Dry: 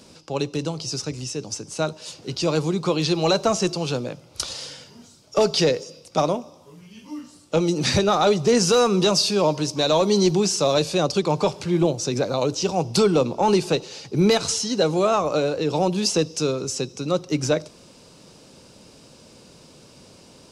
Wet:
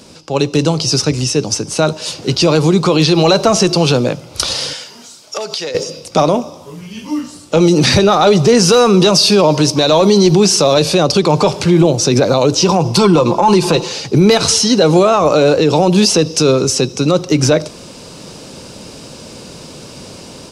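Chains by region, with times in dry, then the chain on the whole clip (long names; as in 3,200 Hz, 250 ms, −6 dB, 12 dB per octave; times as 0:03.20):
0:04.73–0:05.75: high-pass filter 840 Hz 6 dB per octave + downward compressor 20 to 1, threshold −33 dBFS
0:12.62–0:13.92: parametric band 1,000 Hz +11.5 dB 0.27 octaves + comb filter 5.8 ms, depth 51% + downward compressor 2.5 to 1, threshold −20 dBFS
whole clip: dynamic equaliser 7,200 Hz, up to −5 dB, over −44 dBFS, Q 3.1; automatic gain control gain up to 7 dB; boost into a limiter +9.5 dB; level −1 dB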